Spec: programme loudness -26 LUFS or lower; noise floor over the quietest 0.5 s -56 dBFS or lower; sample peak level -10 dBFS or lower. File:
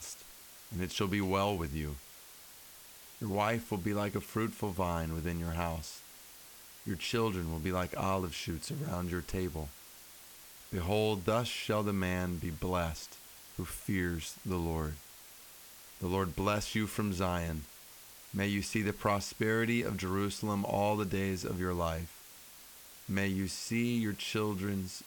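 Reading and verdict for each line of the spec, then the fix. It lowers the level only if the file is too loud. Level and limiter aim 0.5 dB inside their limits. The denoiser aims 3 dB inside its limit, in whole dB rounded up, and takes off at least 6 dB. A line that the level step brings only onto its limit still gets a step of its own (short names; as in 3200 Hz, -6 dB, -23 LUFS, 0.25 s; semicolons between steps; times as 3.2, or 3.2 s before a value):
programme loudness -34.5 LUFS: OK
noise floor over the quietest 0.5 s -54 dBFS: fail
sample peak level -16.0 dBFS: OK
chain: denoiser 6 dB, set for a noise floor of -54 dBFS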